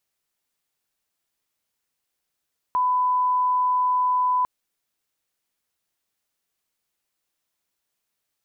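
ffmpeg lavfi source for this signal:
-f lavfi -i "sine=f=1000:d=1.7:r=44100,volume=0.06dB"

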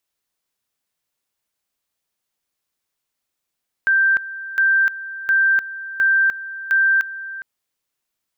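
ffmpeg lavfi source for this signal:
-f lavfi -i "aevalsrc='pow(10,(-12.5-15.5*gte(mod(t,0.71),0.3))/20)*sin(2*PI*1570*t)':d=3.55:s=44100"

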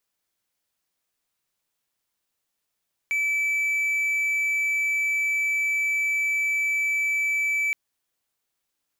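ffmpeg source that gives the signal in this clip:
-f lavfi -i "aevalsrc='0.106*(1-4*abs(mod(2310*t+0.25,1)-0.5))':d=4.62:s=44100"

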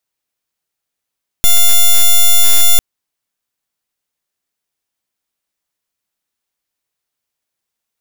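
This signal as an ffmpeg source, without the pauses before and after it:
-f lavfi -i "aevalsrc='0.501*(2*lt(mod(3500*t,1),0.06)-1)':d=1.35:s=44100"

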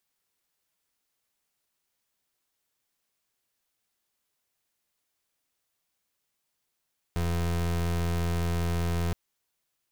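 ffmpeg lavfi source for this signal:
-f lavfi -i "aevalsrc='0.0422*(2*lt(mod(85.2*t,1),0.3)-1)':d=1.97:s=44100"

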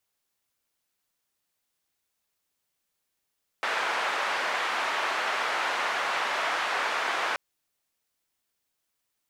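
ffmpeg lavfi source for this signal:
-f lavfi -i "anoisesrc=c=white:d=3.73:r=44100:seed=1,highpass=f=750,lowpass=f=1600,volume=-10.2dB"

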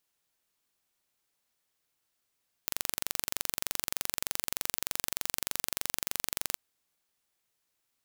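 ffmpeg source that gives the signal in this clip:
-f lavfi -i "aevalsrc='0.708*eq(mod(n,1893),0)':d=3.9:s=44100"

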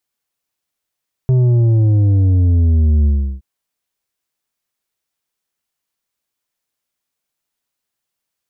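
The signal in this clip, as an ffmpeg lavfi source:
-f lavfi -i "aevalsrc='0.316*clip((2.12-t)/0.35,0,1)*tanh(2.24*sin(2*PI*130*2.12/log(65/130)*(exp(log(65/130)*t/2.12)-1)))/tanh(2.24)':d=2.12:s=44100"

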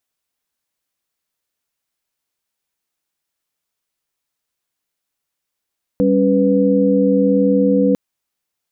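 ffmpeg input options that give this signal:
-f lavfi -i "aevalsrc='0.168*(sin(2*PI*196*t)+sin(2*PI*277.18*t)+sin(2*PI*493.88*t))':d=1.95:s=44100"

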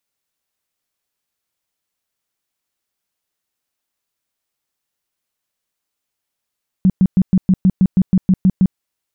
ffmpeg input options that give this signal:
-f lavfi -i "aevalsrc='0.422*sin(2*PI*187*mod(t,0.16))*lt(mod(t,0.16),9/187)':d=1.92:s=44100"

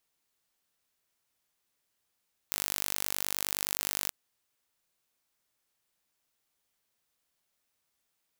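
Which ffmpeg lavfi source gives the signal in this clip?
-f lavfi -i "aevalsrc='0.596*eq(mod(n,889),0)':d=1.58:s=44100"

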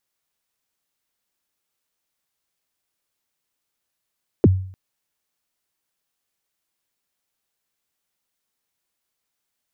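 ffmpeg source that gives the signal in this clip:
-f lavfi -i "aevalsrc='0.473*pow(10,-3*t/0.53)*sin(2*PI*(480*0.032/log(94/480)*(exp(log(94/480)*min(t,0.032)/0.032)-1)+94*max(t-0.032,0)))':d=0.3:s=44100"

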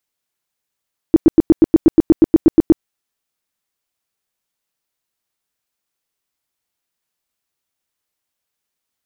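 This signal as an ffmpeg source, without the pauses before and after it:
-f lavfi -i "aevalsrc='0.708*sin(2*PI*323*mod(t,0.12))*lt(mod(t,0.12),7/323)':d=1.68:s=44100"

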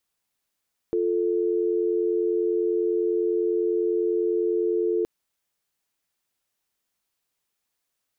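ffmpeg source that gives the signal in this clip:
-f lavfi -i "aevalsrc='0.0668*(sin(2*PI*350*t)+sin(2*PI*440*t))':d=4.12:s=44100"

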